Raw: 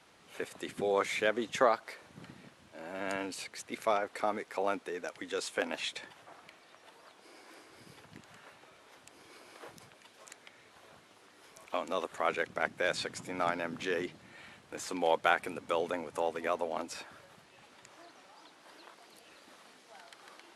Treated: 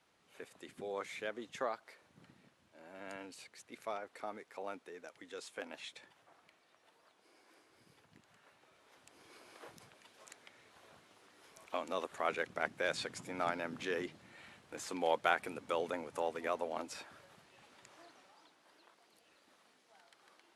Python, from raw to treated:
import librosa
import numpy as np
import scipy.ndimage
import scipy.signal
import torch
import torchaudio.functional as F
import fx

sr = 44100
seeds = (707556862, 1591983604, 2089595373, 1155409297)

y = fx.gain(x, sr, db=fx.line((8.38, -11.5), (9.33, -4.0), (18.06, -4.0), (18.71, -11.0)))